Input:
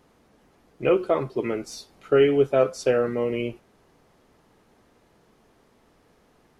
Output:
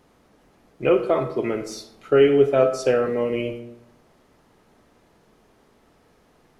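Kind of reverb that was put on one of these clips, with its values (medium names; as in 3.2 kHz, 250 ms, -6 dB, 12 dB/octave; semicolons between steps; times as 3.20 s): algorithmic reverb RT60 0.9 s, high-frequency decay 0.55×, pre-delay 0 ms, DRR 8.5 dB; trim +1.5 dB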